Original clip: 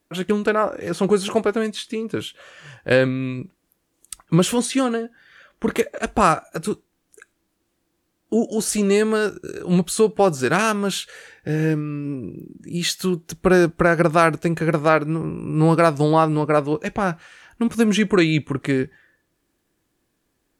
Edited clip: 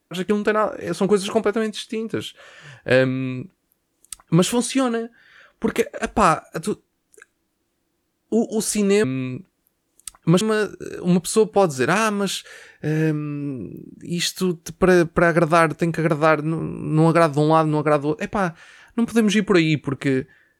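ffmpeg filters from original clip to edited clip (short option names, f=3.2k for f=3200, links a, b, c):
-filter_complex "[0:a]asplit=3[a][b][c];[a]atrim=end=9.042[d];[b]atrim=start=3.088:end=4.462[e];[c]atrim=start=9.038[f];[d][e]acrossfade=d=0.004:c1=hsin:c2=hsin[g];[g][f]acrossfade=d=0.004:c1=hsin:c2=hsin"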